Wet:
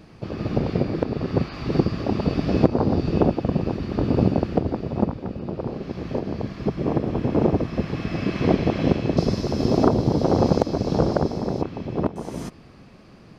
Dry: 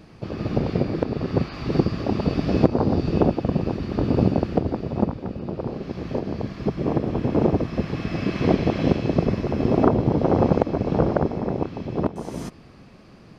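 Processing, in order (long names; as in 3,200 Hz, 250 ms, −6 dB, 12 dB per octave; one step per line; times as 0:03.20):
0:09.17–0:11.62: high shelf with overshoot 3,500 Hz +10.5 dB, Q 1.5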